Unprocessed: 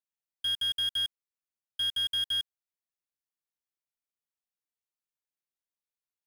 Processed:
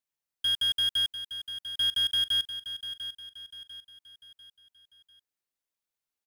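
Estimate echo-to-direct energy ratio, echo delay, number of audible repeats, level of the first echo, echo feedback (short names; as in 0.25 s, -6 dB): -10.0 dB, 0.696 s, 4, -11.0 dB, 42%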